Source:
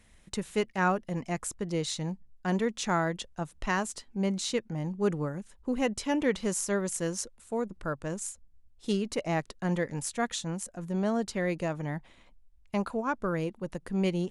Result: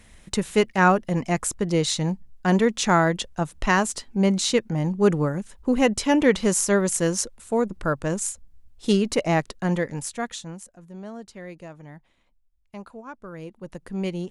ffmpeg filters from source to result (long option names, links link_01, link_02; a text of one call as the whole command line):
ffmpeg -i in.wav -af "volume=18dB,afade=type=out:start_time=9.17:duration=1.07:silence=0.375837,afade=type=out:start_time=10.24:duration=0.57:silence=0.334965,afade=type=in:start_time=13.31:duration=0.49:silence=0.354813" out.wav